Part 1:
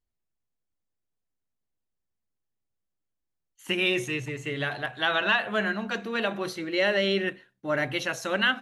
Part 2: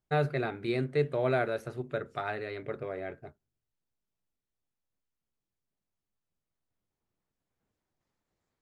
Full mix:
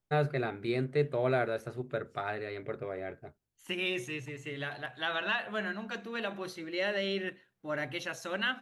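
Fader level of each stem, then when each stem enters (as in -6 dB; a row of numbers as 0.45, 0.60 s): -8.0, -1.0 dB; 0.00, 0.00 s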